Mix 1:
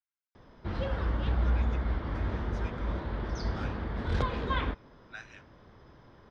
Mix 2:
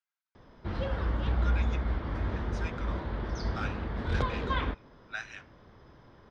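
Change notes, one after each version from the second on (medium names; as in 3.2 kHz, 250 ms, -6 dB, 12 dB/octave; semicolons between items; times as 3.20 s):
speech +7.0 dB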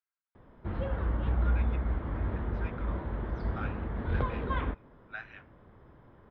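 master: add distance through air 460 m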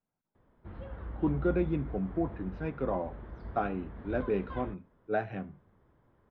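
speech: remove high-pass 1.3 kHz 24 dB/octave; background -10.5 dB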